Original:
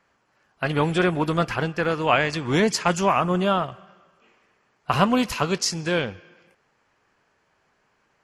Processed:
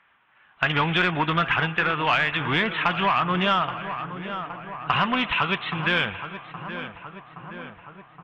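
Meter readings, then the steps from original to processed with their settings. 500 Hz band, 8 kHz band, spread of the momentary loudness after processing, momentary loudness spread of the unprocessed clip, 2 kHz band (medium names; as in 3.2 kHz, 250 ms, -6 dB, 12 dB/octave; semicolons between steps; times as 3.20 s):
-6.5 dB, under -20 dB, 17 LU, 6 LU, +5.0 dB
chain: in parallel at -7 dB: wavefolder -19 dBFS; on the sum: level rider gain up to 5 dB; resampled via 8 kHz; overdrive pedal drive 9 dB, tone 2.1 kHz, clips at -2 dBFS; FFT filter 160 Hz 0 dB, 510 Hz -9 dB, 910 Hz 0 dB, 2.8 kHz +6 dB; on a send: filtered feedback delay 821 ms, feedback 68%, low-pass 2 kHz, level -13.5 dB; on the sum: compression 2.5:1, threshold -18 dBFS, peak gain reduction 6 dB; trim -2 dB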